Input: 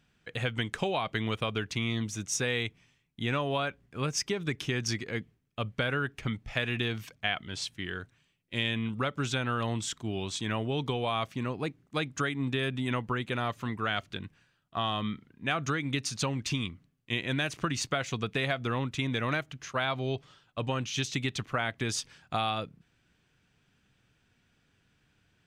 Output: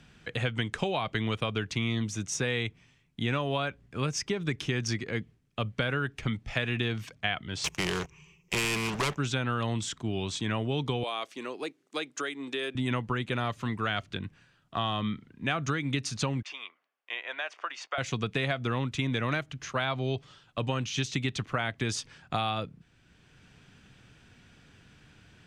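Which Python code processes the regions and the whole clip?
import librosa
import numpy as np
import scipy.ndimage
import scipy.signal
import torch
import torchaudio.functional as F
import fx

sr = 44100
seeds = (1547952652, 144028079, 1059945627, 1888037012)

y = fx.chain(x, sr, fx.ripple_eq(per_octave=0.76, db=18),
    fx.leveller(passes=3),
    fx.spectral_comp(ratio=2.0), at=(7.64, 9.17))
y = fx.chain(y, sr, fx.ladder_highpass(hz=290.0, resonance_pct=35),
    fx.high_shelf(hz=2800.0, db=10.0), at=(11.03, 12.75))
y = fx.chain(y, sr, fx.highpass(hz=640.0, slope=24),
    fx.spacing_loss(db_at_10k=24),
    fx.notch(hz=4000.0, q=11.0), at=(16.42, 17.98))
y = scipy.signal.sosfilt(scipy.signal.butter(2, 10000.0, 'lowpass', fs=sr, output='sos'), y)
y = fx.low_shelf(y, sr, hz=200.0, db=3.0)
y = fx.band_squash(y, sr, depth_pct=40)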